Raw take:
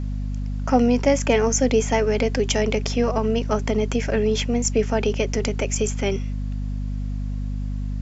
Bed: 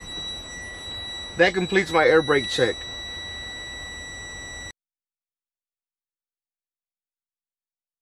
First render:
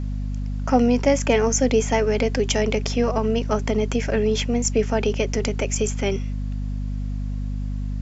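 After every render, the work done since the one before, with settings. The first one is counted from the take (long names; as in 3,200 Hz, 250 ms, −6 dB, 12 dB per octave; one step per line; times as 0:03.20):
no processing that can be heard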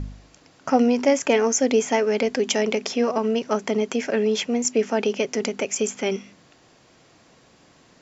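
hum removal 50 Hz, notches 5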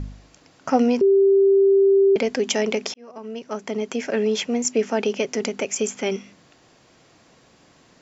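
0:01.01–0:02.16: beep over 392 Hz −12 dBFS
0:02.94–0:04.21: fade in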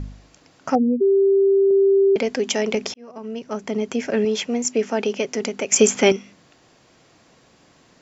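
0:00.75–0:01.71: expanding power law on the bin magnitudes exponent 2.8
0:02.74–0:04.25: low-shelf EQ 180 Hz +9.5 dB
0:05.72–0:06.12: clip gain +9.5 dB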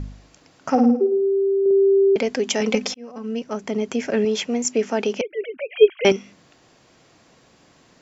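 0:00.70–0:01.66: flutter between parallel walls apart 9.4 metres, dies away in 0.58 s
0:02.60–0:03.44: comb filter 3.9 ms, depth 84%
0:05.21–0:06.05: three sine waves on the formant tracks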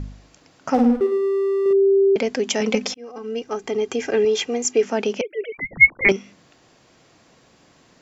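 0:00.74–0:01.73: slack as between gear wheels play −24.5 dBFS
0:02.97–0:04.83: comb filter 2.5 ms, depth 61%
0:05.52–0:06.09: voice inversion scrambler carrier 2,600 Hz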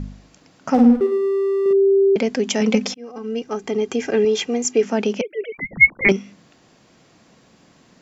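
parametric band 200 Hz +6.5 dB 0.81 octaves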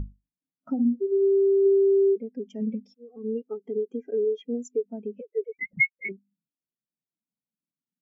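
downward compressor 16 to 1, threshold −25 dBFS, peak gain reduction 19 dB
every bin expanded away from the loudest bin 2.5 to 1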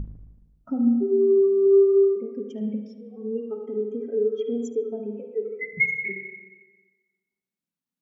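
tape delay 75 ms, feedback 60%, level −10.5 dB, low-pass 2,000 Hz
spring reverb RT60 1.3 s, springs 38/47/53 ms, chirp 30 ms, DRR 4.5 dB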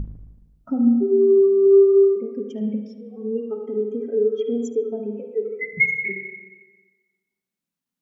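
level +3.5 dB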